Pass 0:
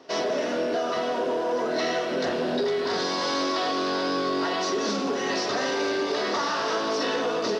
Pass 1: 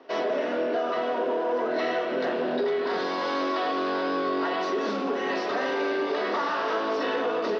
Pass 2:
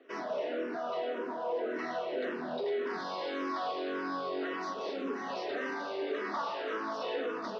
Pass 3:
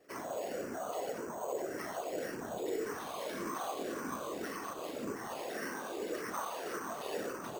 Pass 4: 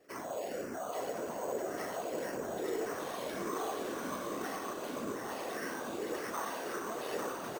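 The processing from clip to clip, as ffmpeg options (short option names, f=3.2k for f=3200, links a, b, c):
-filter_complex "[0:a]acrossover=split=190 3400:gain=0.126 1 0.1[a][b][c];[a][b][c]amix=inputs=3:normalize=0"
-filter_complex "[0:a]asplit=2[a][b];[b]afreqshift=-1.8[c];[a][c]amix=inputs=2:normalize=1,volume=-5.5dB"
-af "afftfilt=real='hypot(re,im)*cos(2*PI*random(0))':imag='hypot(re,im)*sin(2*PI*random(1))':win_size=512:overlap=0.75,acrusher=samples=6:mix=1:aa=0.000001,volume=2dB"
-af "aecho=1:1:847:0.562"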